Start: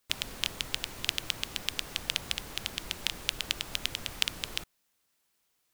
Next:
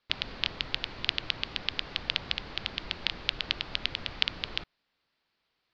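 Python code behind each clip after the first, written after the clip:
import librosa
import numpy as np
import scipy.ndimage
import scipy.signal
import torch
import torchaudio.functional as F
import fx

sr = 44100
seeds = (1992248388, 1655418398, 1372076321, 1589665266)

y = scipy.signal.sosfilt(scipy.signal.ellip(4, 1.0, 70, 4600.0, 'lowpass', fs=sr, output='sos'), x)
y = F.gain(torch.from_numpy(y), 2.5).numpy()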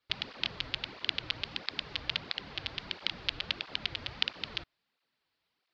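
y = fx.flanger_cancel(x, sr, hz=1.5, depth_ms=5.7)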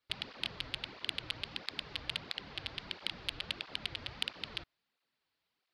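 y = 10.0 ** (-12.5 / 20.0) * np.tanh(x / 10.0 ** (-12.5 / 20.0))
y = F.gain(torch.from_numpy(y), -3.0).numpy()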